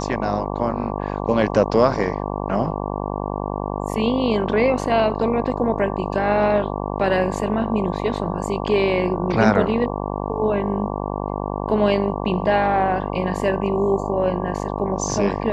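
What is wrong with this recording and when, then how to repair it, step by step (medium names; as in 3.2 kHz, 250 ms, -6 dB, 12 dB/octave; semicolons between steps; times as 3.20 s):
buzz 50 Hz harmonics 23 -26 dBFS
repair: de-hum 50 Hz, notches 23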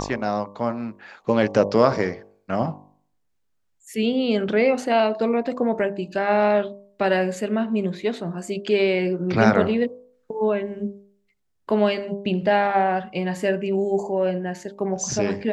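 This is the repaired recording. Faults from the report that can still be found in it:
nothing left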